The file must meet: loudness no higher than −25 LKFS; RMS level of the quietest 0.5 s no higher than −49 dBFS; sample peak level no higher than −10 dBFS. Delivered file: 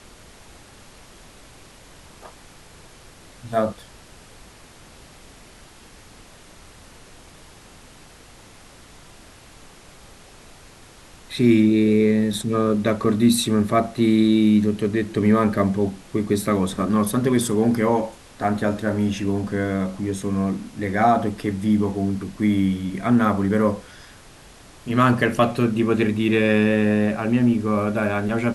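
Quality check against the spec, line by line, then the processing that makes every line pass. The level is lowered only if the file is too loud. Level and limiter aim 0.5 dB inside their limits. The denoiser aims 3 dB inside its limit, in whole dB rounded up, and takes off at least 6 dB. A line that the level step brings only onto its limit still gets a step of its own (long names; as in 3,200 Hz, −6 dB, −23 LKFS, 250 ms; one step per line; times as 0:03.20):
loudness −20.5 LKFS: out of spec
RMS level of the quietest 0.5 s −46 dBFS: out of spec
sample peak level −5.0 dBFS: out of spec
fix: level −5 dB
brickwall limiter −10.5 dBFS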